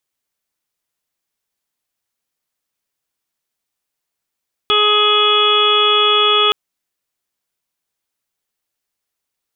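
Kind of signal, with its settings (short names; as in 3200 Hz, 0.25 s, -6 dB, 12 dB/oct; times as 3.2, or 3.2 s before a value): steady additive tone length 1.82 s, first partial 420 Hz, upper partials -10/3/-15.5/-13.5/-4/-3/4 dB, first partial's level -18 dB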